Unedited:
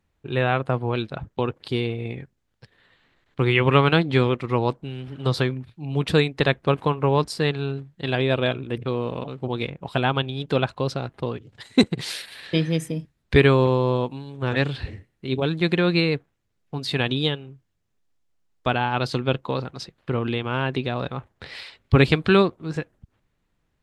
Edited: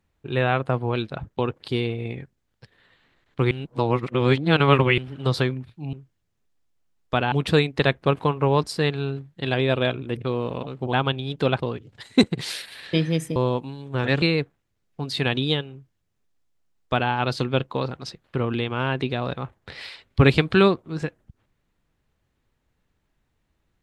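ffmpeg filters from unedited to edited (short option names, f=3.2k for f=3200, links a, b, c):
-filter_complex "[0:a]asplit=9[a][b][c][d][e][f][g][h][i];[a]atrim=end=3.512[j];[b]atrim=start=3.508:end=4.982,asetpts=PTS-STARTPTS,areverse[k];[c]atrim=start=4.978:end=5.932[l];[d]atrim=start=17.458:end=18.852[m];[e]atrim=start=5.928:end=9.542[n];[f]atrim=start=10.028:end=10.682[o];[g]atrim=start=11.178:end=12.962[p];[h]atrim=start=13.838:end=14.702[q];[i]atrim=start=15.958[r];[j][k]acrossfade=d=0.004:c1=hsin:c2=hsin[s];[s][l]acrossfade=d=0.004:c1=hsin:c2=hsin[t];[t][m]acrossfade=d=0.004:c1=hsin:c2=hsin[u];[u][n]acrossfade=d=0.004:c1=hsin:c2=hsin[v];[v][o]acrossfade=d=0.004:c1=hsin:c2=hsin[w];[w][p]acrossfade=d=0.004:c1=hsin:c2=hsin[x];[x][q]acrossfade=d=0.004:c1=hsin:c2=hsin[y];[y][r]acrossfade=d=0.004:c1=hsin:c2=hsin"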